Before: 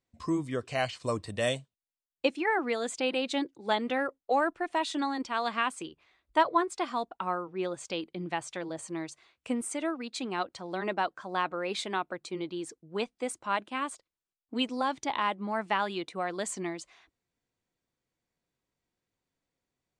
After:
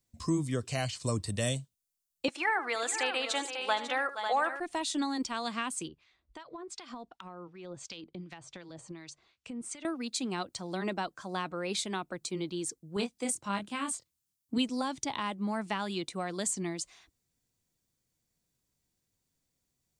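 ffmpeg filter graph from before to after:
ffmpeg -i in.wav -filter_complex "[0:a]asettb=1/sr,asplit=3[link_01][link_02][link_03];[link_01]atrim=end=2.284[link_04];[link_02]atrim=start=2.28:end=4.6,asetpts=PTS-STARTPTS,afade=type=in:duration=0.004:curve=qsin,afade=type=out:start_time=2.316:duration=0.004:curve=qsin,highpass=630,equalizer=frequency=1200:width_type=o:width=2.6:gain=12.5,aecho=1:1:76|470|546:0.168|0.2|0.299,atrim=end_sample=102312[link_05];[link_03]atrim=start=4.596[link_06];[link_04][link_05]acrossfade=duration=0.004:curve1=hsin:curve2=qsin[link_07];[link_07][link_06]acrossfade=duration=0.004:curve1=qsin:curve2=hsin,asettb=1/sr,asplit=3[link_08][link_09][link_10];[link_08]atrim=end=5.884[link_11];[link_09]atrim=start=5.88:end=9.85,asetpts=PTS-STARTPTS,afade=type=in:duration=0.004:curve=qsin,afade=type=out:start_time=3.966:duration=0.004:curve=qsin,lowpass=4700,acompressor=threshold=-36dB:ratio=16:attack=3.2:release=140:knee=1:detection=peak,acrossover=split=1200[link_12][link_13];[link_12]aeval=exprs='val(0)*(1-0.7/2+0.7/2*cos(2*PI*2.7*n/s))':channel_layout=same[link_14];[link_13]aeval=exprs='val(0)*(1-0.7/2-0.7/2*cos(2*PI*2.7*n/s))':channel_layout=same[link_15];[link_14][link_15]amix=inputs=2:normalize=0[link_16];[link_10]atrim=start=9.846[link_17];[link_11][link_16]acrossfade=duration=0.004:curve1=hsin:curve2=qsin[link_18];[link_18][link_17]acrossfade=duration=0.004:curve1=qsin:curve2=hsin,asettb=1/sr,asplit=3[link_19][link_20][link_21];[link_19]atrim=end=12.964[link_22];[link_20]atrim=start=12.96:end=14.58,asetpts=PTS-STARTPTS,afade=type=in:duration=0.004:curve=qsin,afade=type=out:start_time=1.616:duration=0.004:curve=qsin,highpass=85,asubboost=boost=5.5:cutoff=230,asplit=2[link_23][link_24];[link_24]adelay=25,volume=-5dB[link_25];[link_23][link_25]amix=inputs=2:normalize=0,atrim=end_sample=71442[link_26];[link_21]atrim=start=14.576[link_27];[link_22][link_26]acrossfade=duration=0.004:curve1=hsin:curve2=qsin[link_28];[link_28][link_27]acrossfade=duration=0.004:curve1=qsin:curve2=hsin,bass=frequency=250:gain=9,treble=frequency=4000:gain=14,acrossover=split=320[link_29][link_30];[link_30]acompressor=threshold=-31dB:ratio=2[link_31];[link_29][link_31]amix=inputs=2:normalize=0,volume=-2.5dB" out.wav

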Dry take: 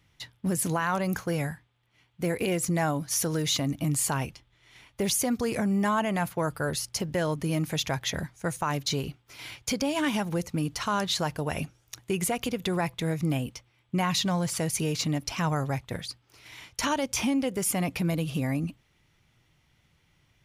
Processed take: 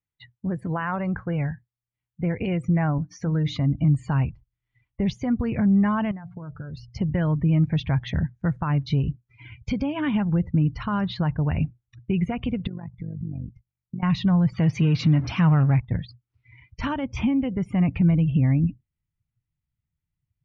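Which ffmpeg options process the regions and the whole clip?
ffmpeg -i in.wav -filter_complex "[0:a]asettb=1/sr,asplit=3[link_01][link_02][link_03];[link_01]atrim=end=2.984[link_04];[link_02]atrim=start=2.98:end=3.62,asetpts=PTS-STARTPTS,afade=type=in:duration=0.004:curve=qsin,afade=type=out:start_time=0.636:duration=0.004:curve=qsin,bandreject=frequency=60:width_type=h:width=6,bandreject=frequency=120:width_type=h:width=6,bandreject=frequency=180:width_type=h:width=6,bandreject=frequency=240:width_type=h:width=6,bandreject=frequency=300:width_type=h:width=6,agate=range=-33dB:threshold=-35dB:ratio=3:release=100:detection=peak,equalizer=frequency=2900:width=5.9:gain=-4[link_05];[link_03]atrim=start=3.616[link_06];[link_04][link_05]acrossfade=duration=0.004:curve1=hsin:curve2=qsin[link_07];[link_07][link_06]acrossfade=duration=0.004:curve1=qsin:curve2=hsin,asettb=1/sr,asplit=3[link_08][link_09][link_10];[link_08]atrim=end=6.114[link_11];[link_09]atrim=start=6.11:end=6.77,asetpts=PTS-STARTPTS,afade=type=in:duration=0.004:curve=qsin,afade=type=out:start_time=0.656:duration=0.004:curve=qsin,acompressor=threshold=-37dB:ratio=10:attack=3.2:release=140:knee=1:detection=peak,bandreject=frequency=89.59:width_type=h:width=4,bandreject=frequency=179.18:width_type=h:width=4,bandreject=frequency=268.77:width_type=h:width=4,bandreject=frequency=358.36:width_type=h:width=4,bandreject=frequency=447.95:width_type=h:width=4,bandreject=frequency=537.54:width_type=h:width=4,bandreject=frequency=627.13:width_type=h:width=4,bandreject=frequency=716.72:width_type=h:width=4,bandreject=frequency=806.31:width_type=h:width=4[link_12];[link_10]atrim=start=6.766[link_13];[link_11][link_12]acrossfade=duration=0.004:curve1=hsin:curve2=qsin[link_14];[link_14][link_13]acrossfade=duration=0.004:curve1=qsin:curve2=hsin,asettb=1/sr,asplit=3[link_15][link_16][link_17];[link_15]atrim=end=12.674[link_18];[link_16]atrim=start=12.67:end=14.03,asetpts=PTS-STARTPTS,afade=type=in:duration=0.004:curve=qsin,afade=type=out:start_time=1.356:duration=0.004:curve=qsin,equalizer=frequency=3500:width=2.3:gain=-7.5,tremolo=f=48:d=0.857,acompressor=threshold=-38dB:ratio=4:attack=3.2:release=140:knee=1:detection=peak[link_19];[link_17]atrim=start=14.026[link_20];[link_18][link_19]acrossfade=duration=0.004:curve1=hsin:curve2=qsin[link_21];[link_21][link_20]acrossfade=duration=0.004:curve1=qsin:curve2=hsin,asettb=1/sr,asplit=3[link_22][link_23][link_24];[link_22]atrim=end=14.584[link_25];[link_23]atrim=start=14.58:end=15.8,asetpts=PTS-STARTPTS,afade=type=in:duration=0.004:curve=qsin,afade=type=out:start_time=1.216:duration=0.004:curve=qsin,aeval=exprs='val(0)+0.5*0.0266*sgn(val(0))':channel_layout=same,highpass=110,lowpass=6200,highshelf=frequency=3600:gain=8[link_26];[link_24]atrim=start=15.796[link_27];[link_25][link_26]acrossfade=duration=0.004:curve1=hsin:curve2=qsin[link_28];[link_28][link_27]acrossfade=duration=0.004:curve1=qsin:curve2=hsin,lowpass=2700,afftdn=noise_reduction=28:noise_floor=-43,asubboost=boost=6:cutoff=180" out.wav

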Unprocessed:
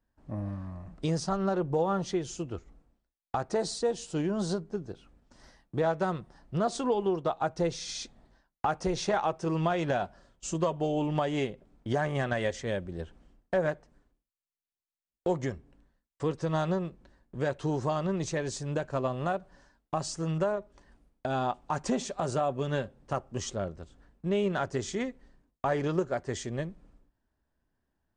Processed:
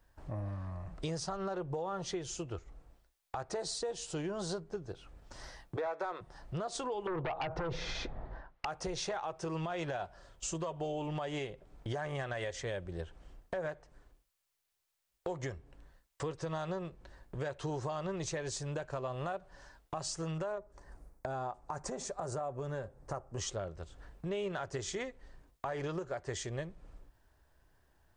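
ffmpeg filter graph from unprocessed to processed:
ffmpeg -i in.wav -filter_complex "[0:a]asettb=1/sr,asplit=3[link_01][link_02][link_03];[link_01]atrim=end=5.764[link_04];[link_02]atrim=start=5.76:end=6.21,asetpts=PTS-STARTPTS,afade=type=in:duration=0.004:curve=qsin,afade=type=out:start_time=0.446:duration=0.004:curve=qsin,highpass=frequency=260:width=0.5412,highpass=frequency=260:width=1.3066,asplit=2[link_05][link_06];[link_06]highpass=frequency=720:poles=1,volume=12dB,asoftclip=type=tanh:threshold=-17.5dB[link_07];[link_05][link_07]amix=inputs=2:normalize=0,lowpass=frequency=1900:poles=1,volume=-6dB,bandreject=frequency=2900:width=5.5[link_08];[link_03]atrim=start=6.206[link_09];[link_04][link_08]acrossfade=duration=0.004:curve1=hsin:curve2=qsin[link_10];[link_10][link_09]acrossfade=duration=0.004:curve1=qsin:curve2=hsin,asettb=1/sr,asplit=3[link_11][link_12][link_13];[link_11]atrim=end=7.074[link_14];[link_12]atrim=start=7.07:end=8.65,asetpts=PTS-STARTPTS,afade=type=in:duration=0.004:curve=qsin,afade=type=out:start_time=1.576:duration=0.004:curve=qsin,lowpass=1400,acompressor=threshold=-31dB:ratio=8:attack=3.2:release=140:knee=1:detection=peak,aeval=exprs='0.0944*sin(PI/2*4.47*val(0)/0.0944)':channel_layout=same[link_15];[link_13]atrim=start=8.646[link_16];[link_14][link_15]acrossfade=duration=0.004:curve1=hsin:curve2=qsin[link_17];[link_17][link_16]acrossfade=duration=0.004:curve1=qsin:curve2=hsin,asettb=1/sr,asplit=3[link_18][link_19][link_20];[link_18]atrim=end=20.584[link_21];[link_19]atrim=start=20.58:end=23.38,asetpts=PTS-STARTPTS,afade=type=in:duration=0.004:curve=qsin,afade=type=out:start_time=2.796:duration=0.004:curve=qsin,equalizer=frequency=3100:width_type=o:width=1.1:gain=-13.5,acompressor=threshold=-31dB:ratio=2.5:attack=3.2:release=140:knee=1:detection=peak[link_22];[link_20]atrim=start=23.376[link_23];[link_21][link_22]acrossfade=duration=0.004:curve1=hsin:curve2=qsin[link_24];[link_24][link_23]acrossfade=duration=0.004:curve1=qsin:curve2=hsin,equalizer=frequency=230:width=1.7:gain=-12,alimiter=level_in=1.5dB:limit=-24dB:level=0:latency=1:release=100,volume=-1.5dB,acompressor=threshold=-60dB:ratio=2,volume=12dB" out.wav

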